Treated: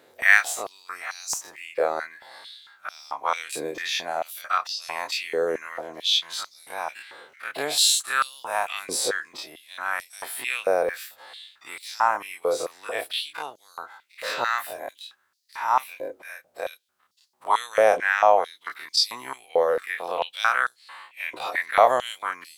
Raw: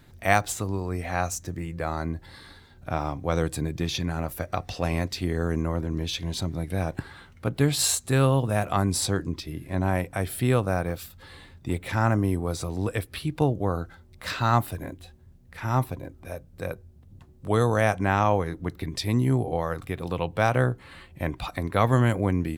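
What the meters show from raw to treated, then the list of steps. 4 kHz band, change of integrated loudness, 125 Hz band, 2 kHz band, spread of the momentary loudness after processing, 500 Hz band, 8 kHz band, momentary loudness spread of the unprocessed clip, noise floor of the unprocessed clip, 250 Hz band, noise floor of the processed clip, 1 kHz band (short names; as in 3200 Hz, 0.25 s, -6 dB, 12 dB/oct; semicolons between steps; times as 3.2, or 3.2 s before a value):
+8.0 dB, +2.0 dB, -32.5 dB, +7.0 dB, 21 LU, +2.0 dB, +3.0 dB, 14 LU, -52 dBFS, -17.0 dB, -65 dBFS, +4.0 dB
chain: spectral dilation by 60 ms; stepped high-pass 4.5 Hz 490–4700 Hz; gain -3 dB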